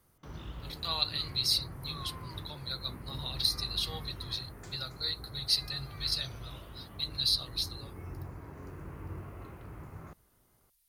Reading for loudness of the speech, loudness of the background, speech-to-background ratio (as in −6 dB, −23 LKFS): −32.5 LKFS, −46.0 LKFS, 13.5 dB